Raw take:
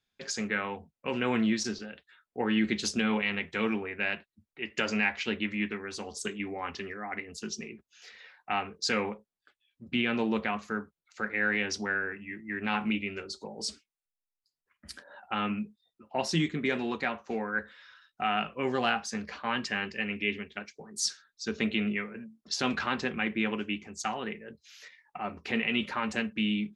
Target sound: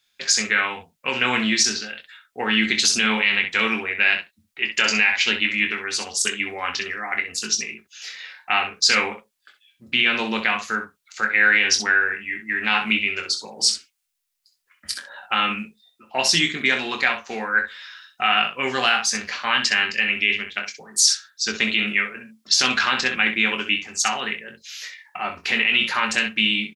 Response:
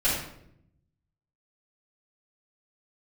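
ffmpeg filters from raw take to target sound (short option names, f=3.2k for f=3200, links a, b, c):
-af "tiltshelf=f=970:g=-9.5,aecho=1:1:23|64:0.422|0.335,alimiter=level_in=12dB:limit=-1dB:release=50:level=0:latency=1,volume=-4.5dB"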